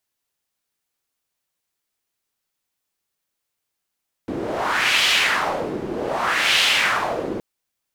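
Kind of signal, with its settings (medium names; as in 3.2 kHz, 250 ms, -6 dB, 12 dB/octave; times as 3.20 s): wind-like swept noise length 3.12 s, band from 340 Hz, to 3 kHz, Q 2.2, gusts 2, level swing 10.5 dB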